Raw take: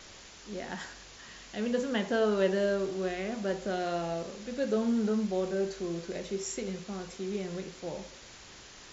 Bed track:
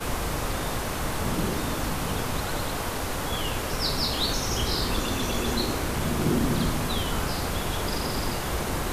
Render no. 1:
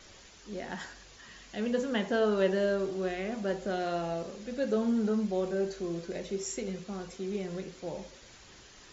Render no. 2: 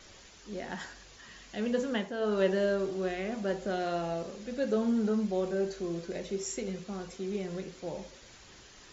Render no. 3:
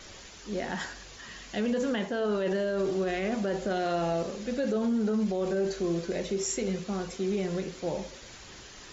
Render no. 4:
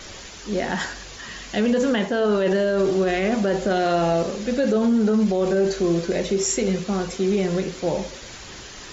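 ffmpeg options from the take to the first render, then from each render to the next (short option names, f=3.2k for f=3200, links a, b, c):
-af "afftdn=nr=6:nf=-51"
-filter_complex "[0:a]asplit=3[a][b][c];[a]atrim=end=2.13,asetpts=PTS-STARTPTS,afade=t=out:st=1.84:d=0.29:c=qsin:silence=0.375837[d];[b]atrim=start=2.13:end=2.16,asetpts=PTS-STARTPTS,volume=-8.5dB[e];[c]atrim=start=2.16,asetpts=PTS-STARTPTS,afade=t=in:d=0.29:c=qsin:silence=0.375837[f];[d][e][f]concat=n=3:v=0:a=1"
-af "acontrast=57,alimiter=limit=-21.5dB:level=0:latency=1:release=28"
-af "volume=8.5dB"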